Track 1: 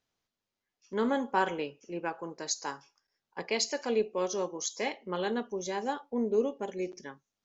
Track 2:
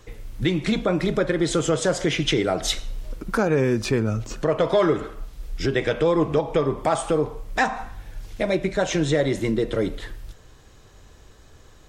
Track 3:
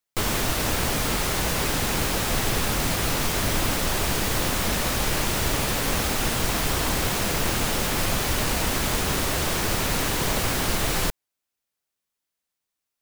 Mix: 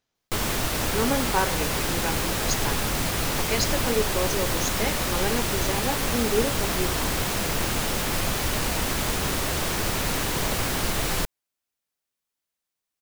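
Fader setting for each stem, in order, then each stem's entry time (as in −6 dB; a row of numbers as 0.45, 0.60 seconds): +3.0 dB, muted, −1.5 dB; 0.00 s, muted, 0.15 s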